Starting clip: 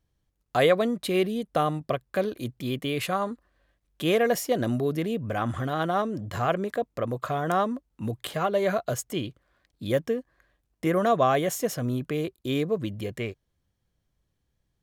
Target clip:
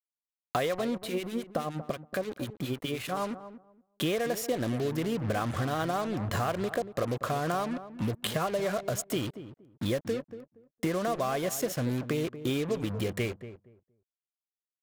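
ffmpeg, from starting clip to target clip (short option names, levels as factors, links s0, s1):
-filter_complex "[0:a]acompressor=threshold=0.0282:ratio=12,acrusher=bits=6:mix=0:aa=0.5,asettb=1/sr,asplit=3[s0][s1][s2];[s0]atrim=end=0.954[s3];[s1]atrim=start=0.95:end=3.17,asetpts=PTS-STARTPTS,afade=t=in:d=0.004:c=qsin,afade=t=out:st=2.216:d=0.004:c=qsin,acrossover=split=1300[s4][s5];[s4]aeval=exprs='val(0)*(1-0.7/2+0.7/2*cos(2*PI*9.6*n/s))':c=same[s6];[s5]aeval=exprs='val(0)*(1-0.7/2-0.7/2*cos(2*PI*9.6*n/s))':c=same[s7];[s6][s7]amix=inputs=2:normalize=0[s8];[s2]atrim=start=3.166[s9];[s3][s8]acrossfade=d=0.004:c1=hsin:c2=qsin[s10];[s10][s9]acrossfade=d=0.004:c1=qsin:c2=hsin,asplit=2[s11][s12];[s12]adelay=235,lowpass=f=990:p=1,volume=0.266,asplit=2[s13][s14];[s14]adelay=235,lowpass=f=990:p=1,volume=0.2,asplit=2[s15][s16];[s16]adelay=235,lowpass=f=990:p=1,volume=0.2[s17];[s11][s13][s15][s17]amix=inputs=4:normalize=0,volume=1.68"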